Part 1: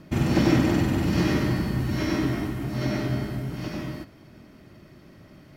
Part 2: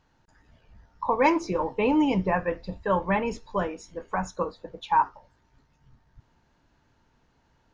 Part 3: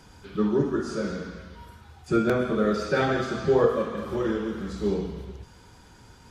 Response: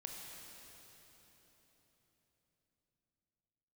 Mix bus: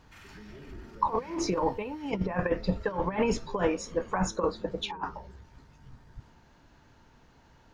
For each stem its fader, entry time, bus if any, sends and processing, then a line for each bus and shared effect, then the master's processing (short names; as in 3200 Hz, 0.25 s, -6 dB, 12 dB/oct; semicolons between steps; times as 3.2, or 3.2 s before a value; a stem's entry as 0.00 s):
-10.0 dB, 0.00 s, bus A, no send, HPF 1300 Hz 24 dB/oct; auto duck -9 dB, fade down 0.80 s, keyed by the second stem
+1.5 dB, 0.00 s, no bus, no send, negative-ratio compressor -29 dBFS, ratio -0.5
-14.5 dB, 0.00 s, bus A, no send, treble ducked by the level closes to 2300 Hz, closed at -21.5 dBFS; compressor, threshold -27 dBFS, peak gain reduction 11.5 dB
bus A: 0.0 dB, tilt -2 dB/oct; limiter -41.5 dBFS, peak gain reduction 12 dB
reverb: off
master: dry